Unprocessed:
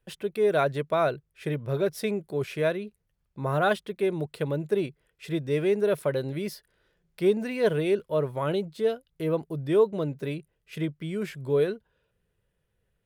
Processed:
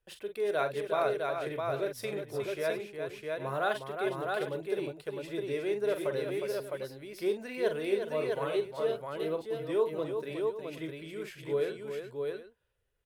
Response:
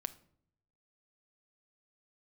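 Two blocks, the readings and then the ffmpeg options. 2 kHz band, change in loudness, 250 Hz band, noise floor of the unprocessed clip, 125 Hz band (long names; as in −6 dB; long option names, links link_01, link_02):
−3.5 dB, −6.0 dB, −8.5 dB, −76 dBFS, −12.5 dB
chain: -af "equalizer=frequency=180:width_type=o:width=0.93:gain=-14,aecho=1:1:44|361|659|763:0.376|0.447|0.668|0.188,volume=-6dB"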